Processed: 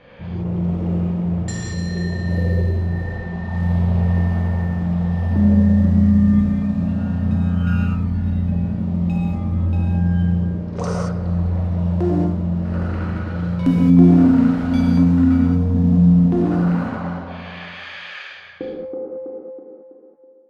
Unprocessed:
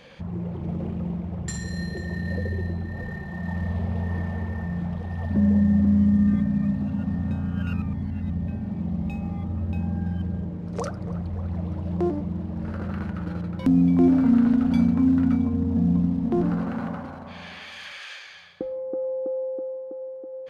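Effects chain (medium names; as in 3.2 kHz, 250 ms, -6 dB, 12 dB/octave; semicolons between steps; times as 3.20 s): fade out at the end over 1.33 s; gated-style reverb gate 250 ms flat, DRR -4.5 dB; level-controlled noise filter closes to 2.1 kHz, open at -17 dBFS; trim +1 dB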